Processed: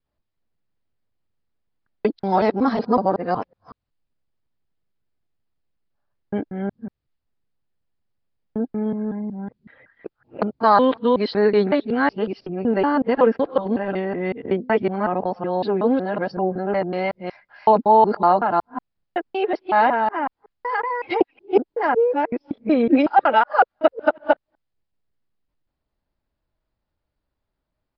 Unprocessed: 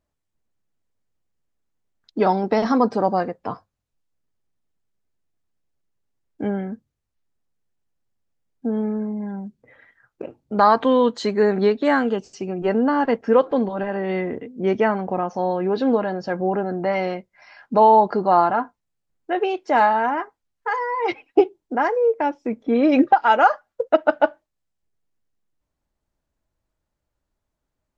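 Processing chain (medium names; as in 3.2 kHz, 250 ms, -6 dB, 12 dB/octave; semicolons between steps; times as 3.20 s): time reversed locally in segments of 186 ms; time-frequency box 5.95–6.15 s, 540–1800 Hz +11 dB; resampled via 11.025 kHz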